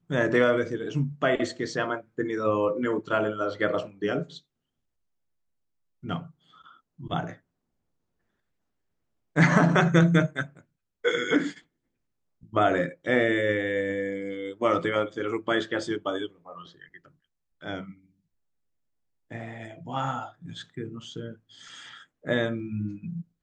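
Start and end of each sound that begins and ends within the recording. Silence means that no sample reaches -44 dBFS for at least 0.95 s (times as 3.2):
6.03–7.35
9.36–17.93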